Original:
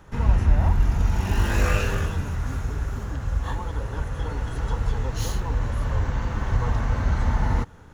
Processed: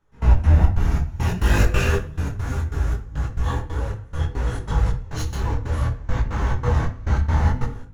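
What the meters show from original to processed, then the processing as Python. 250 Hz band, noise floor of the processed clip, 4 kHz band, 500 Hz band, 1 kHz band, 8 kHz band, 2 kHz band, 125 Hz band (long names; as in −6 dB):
+2.5 dB, −39 dBFS, +2.0 dB, +3.0 dB, +1.5 dB, +1.0 dB, +2.0 dB, +3.5 dB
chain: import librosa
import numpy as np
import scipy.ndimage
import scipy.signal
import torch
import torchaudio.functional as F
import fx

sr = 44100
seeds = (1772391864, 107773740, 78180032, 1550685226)

y = fx.step_gate(x, sr, bpm=138, pattern='..x.xx.xx', floor_db=-24.0, edge_ms=4.5)
y = fx.room_shoebox(y, sr, seeds[0], volume_m3=35.0, walls='mixed', distance_m=0.35)
y = fx.detune_double(y, sr, cents=22)
y = F.gain(torch.from_numpy(y), 6.5).numpy()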